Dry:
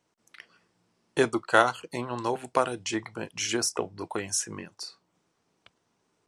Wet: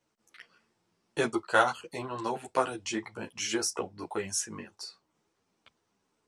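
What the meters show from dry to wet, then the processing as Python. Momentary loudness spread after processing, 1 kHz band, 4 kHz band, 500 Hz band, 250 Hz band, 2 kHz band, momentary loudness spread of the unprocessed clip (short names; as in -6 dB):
16 LU, -2.5 dB, -3.0 dB, -4.0 dB, -3.0 dB, -2.5 dB, 15 LU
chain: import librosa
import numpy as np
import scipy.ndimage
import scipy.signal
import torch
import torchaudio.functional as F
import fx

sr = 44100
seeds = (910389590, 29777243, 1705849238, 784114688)

y = fx.ensemble(x, sr)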